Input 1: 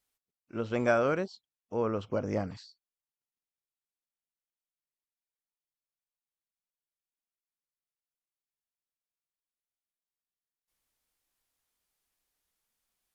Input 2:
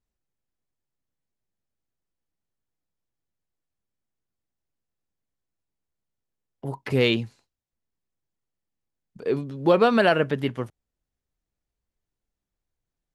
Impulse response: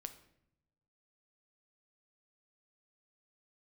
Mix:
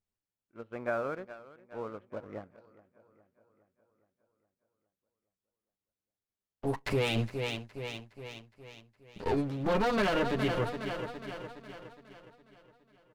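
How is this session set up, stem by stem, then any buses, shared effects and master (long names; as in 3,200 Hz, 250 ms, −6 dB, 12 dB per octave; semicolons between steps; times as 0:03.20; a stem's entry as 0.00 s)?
−9.0 dB, 0.00 s, send −8.5 dB, echo send −13 dB, Chebyshev low-pass filter 1,800 Hz, order 2; low-shelf EQ 260 Hz −4 dB; expander for the loud parts 1.5 to 1, over −46 dBFS
−4.0 dB, 0.00 s, send −18 dB, echo send −13.5 dB, lower of the sound and its delayed copy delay 9.9 ms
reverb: on, pre-delay 7 ms
echo: repeating echo 414 ms, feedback 59%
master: leveller curve on the samples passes 1; brickwall limiter −21 dBFS, peak gain reduction 10 dB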